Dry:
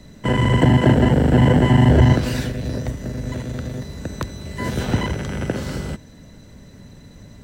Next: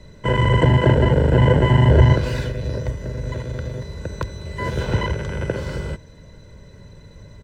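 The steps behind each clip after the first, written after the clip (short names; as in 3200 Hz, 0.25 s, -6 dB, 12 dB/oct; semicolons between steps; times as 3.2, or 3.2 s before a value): LPF 3200 Hz 6 dB/oct; comb 2 ms, depth 59%; gain -1 dB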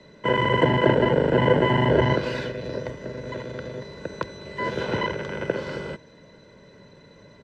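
three-band isolator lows -22 dB, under 170 Hz, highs -17 dB, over 5500 Hz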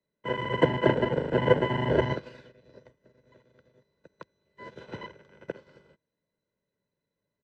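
upward expander 2.5:1, over -38 dBFS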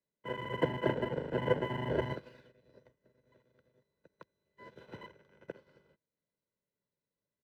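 median filter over 5 samples; gain -8.5 dB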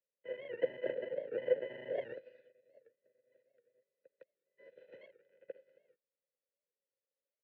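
vowel filter e; record warp 78 rpm, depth 160 cents; gain +3 dB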